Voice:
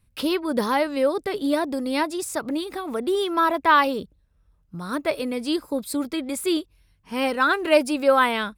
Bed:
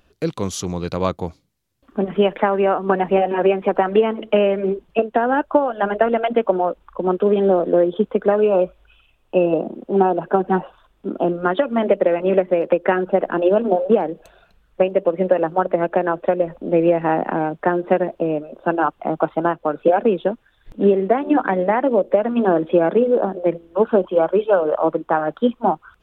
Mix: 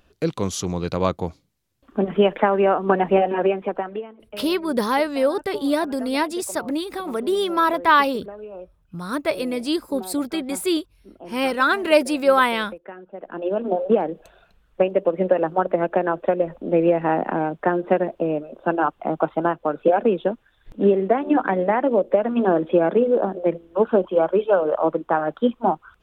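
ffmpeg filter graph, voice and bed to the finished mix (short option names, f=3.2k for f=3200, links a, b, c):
-filter_complex "[0:a]adelay=4200,volume=1.5dB[a];[1:a]volume=18.5dB,afade=t=out:st=3.16:d=0.92:silence=0.0944061,afade=t=in:st=13.14:d=0.85:silence=0.112202[b];[a][b]amix=inputs=2:normalize=0"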